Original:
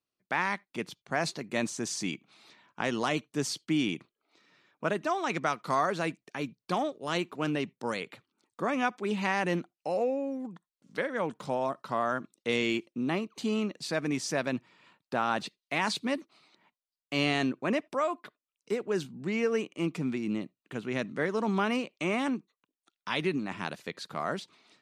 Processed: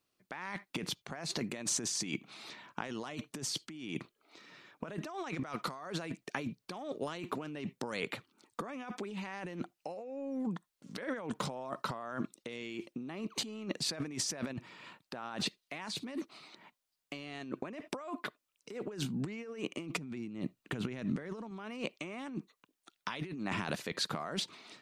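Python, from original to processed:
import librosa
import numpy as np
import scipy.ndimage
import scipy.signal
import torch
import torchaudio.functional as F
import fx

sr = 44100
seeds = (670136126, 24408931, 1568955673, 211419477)

y = fx.low_shelf(x, sr, hz=130.0, db=9.5, at=(19.97, 21.51))
y = fx.over_compress(y, sr, threshold_db=-40.0, ratio=-1.0)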